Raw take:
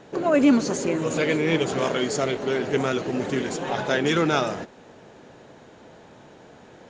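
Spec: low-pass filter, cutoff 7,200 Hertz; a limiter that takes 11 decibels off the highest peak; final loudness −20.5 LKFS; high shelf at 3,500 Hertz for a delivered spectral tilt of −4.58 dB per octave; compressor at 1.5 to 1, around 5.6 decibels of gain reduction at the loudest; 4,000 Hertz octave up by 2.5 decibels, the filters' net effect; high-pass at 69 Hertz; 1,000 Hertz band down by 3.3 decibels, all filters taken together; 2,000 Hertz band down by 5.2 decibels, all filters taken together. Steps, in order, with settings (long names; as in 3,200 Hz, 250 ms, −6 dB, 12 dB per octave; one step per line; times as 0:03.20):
high-pass filter 69 Hz
low-pass filter 7,200 Hz
parametric band 1,000 Hz −3 dB
parametric band 2,000 Hz −8 dB
high-shelf EQ 3,500 Hz +3.5 dB
parametric band 4,000 Hz +4.5 dB
downward compressor 1.5 to 1, threshold −29 dBFS
level +13 dB
brickwall limiter −12 dBFS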